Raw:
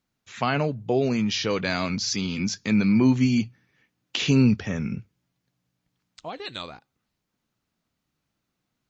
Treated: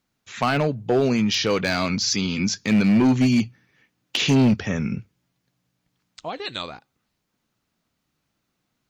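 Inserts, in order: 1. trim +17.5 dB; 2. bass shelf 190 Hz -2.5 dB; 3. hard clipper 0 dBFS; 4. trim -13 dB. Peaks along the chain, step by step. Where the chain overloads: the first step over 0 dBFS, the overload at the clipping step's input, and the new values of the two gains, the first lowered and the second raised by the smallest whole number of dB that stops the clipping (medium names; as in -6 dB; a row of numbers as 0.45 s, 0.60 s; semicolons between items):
+7.5 dBFS, +7.5 dBFS, 0.0 dBFS, -13.0 dBFS; step 1, 7.5 dB; step 1 +9.5 dB, step 4 -5 dB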